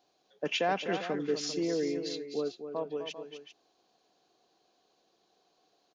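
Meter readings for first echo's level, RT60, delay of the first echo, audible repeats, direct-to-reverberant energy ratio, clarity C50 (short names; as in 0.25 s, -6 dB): -9.0 dB, none, 0.254 s, 2, none, none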